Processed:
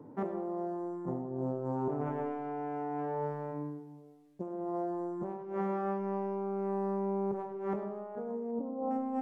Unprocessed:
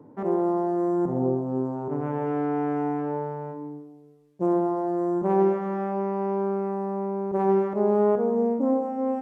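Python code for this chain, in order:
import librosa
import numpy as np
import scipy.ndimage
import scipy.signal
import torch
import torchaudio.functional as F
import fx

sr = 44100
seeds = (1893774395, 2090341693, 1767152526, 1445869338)

y = fx.over_compress(x, sr, threshold_db=-30.0, ratio=-1.0)
y = fx.savgol(y, sr, points=65, at=(8.51, 8.91))
y = fx.rev_freeverb(y, sr, rt60_s=0.84, hf_ratio=0.75, predelay_ms=30, drr_db=7.5)
y = F.gain(torch.from_numpy(y), -6.0).numpy()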